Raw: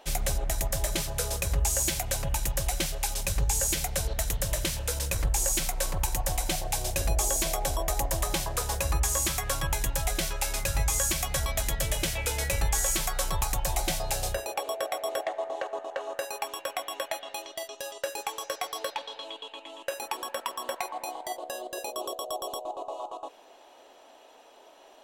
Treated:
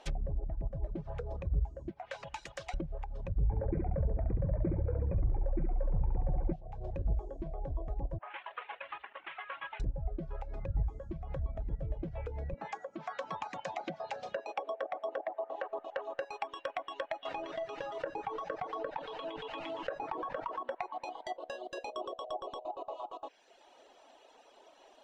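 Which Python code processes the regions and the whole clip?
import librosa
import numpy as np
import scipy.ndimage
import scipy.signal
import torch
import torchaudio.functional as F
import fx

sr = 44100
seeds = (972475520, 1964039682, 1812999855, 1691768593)

y = fx.chain(x, sr, fx.highpass(hz=710.0, slope=6),
    fx.high_shelf(hz=4500.0, db=-11.5), at=(1.91, 2.74))
y = fx.chain(y, sr, fx.brickwall_lowpass(high_hz=2500.0),
    fx.echo_feedback(ms=68, feedback_pct=56, wet_db=-4),
    fx.env_flatten(amount_pct=70), at=(3.44, 6.53))
y = fx.chain(y, sr, fx.cvsd(bps=16000),
    fx.highpass(hz=980.0, slope=12), at=(8.18, 9.8))
y = fx.chain(y, sr, fx.cheby1_bandpass(low_hz=200.0, high_hz=7100.0, order=3),
    fx.notch(hz=380.0, q=10.0), at=(12.54, 15.7))
y = fx.chain(y, sr, fx.delta_mod(bps=64000, step_db=-42.0),
    fx.comb(ms=6.4, depth=0.51),
    fx.env_flatten(amount_pct=70), at=(17.25, 20.63))
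y = fx.env_lowpass_down(y, sr, base_hz=410.0, full_db=-25.0)
y = fx.dereverb_blind(y, sr, rt60_s=0.96)
y = scipy.signal.sosfilt(scipy.signal.butter(2, 7300.0, 'lowpass', fs=sr, output='sos'), y)
y = y * librosa.db_to_amplitude(-3.0)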